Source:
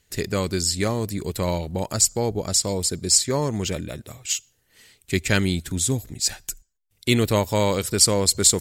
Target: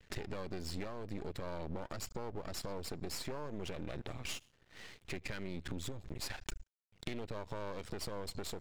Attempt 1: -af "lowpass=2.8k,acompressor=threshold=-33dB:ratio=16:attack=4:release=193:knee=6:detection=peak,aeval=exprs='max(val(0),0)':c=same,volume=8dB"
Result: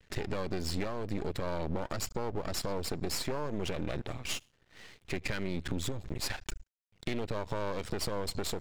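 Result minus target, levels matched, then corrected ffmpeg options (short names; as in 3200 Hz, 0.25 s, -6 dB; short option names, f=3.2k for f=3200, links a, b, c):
compressor: peak gain reduction -7.5 dB
-af "lowpass=2.8k,acompressor=threshold=-41dB:ratio=16:attack=4:release=193:knee=6:detection=peak,aeval=exprs='max(val(0),0)':c=same,volume=8dB"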